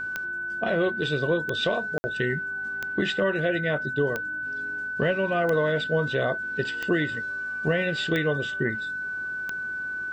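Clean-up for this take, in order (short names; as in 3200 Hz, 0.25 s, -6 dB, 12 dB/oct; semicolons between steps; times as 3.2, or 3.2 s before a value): de-click; de-hum 55.7 Hz, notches 5; notch 1500 Hz, Q 30; interpolate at 1.98, 60 ms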